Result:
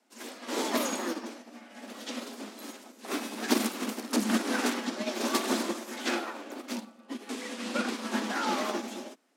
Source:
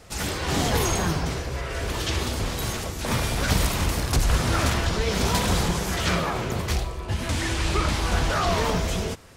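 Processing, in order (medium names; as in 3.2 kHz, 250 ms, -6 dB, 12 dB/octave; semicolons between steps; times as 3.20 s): high-pass 58 Hz 6 dB/octave; frequency shift +170 Hz; upward expansion 2.5:1, over -33 dBFS; trim -1 dB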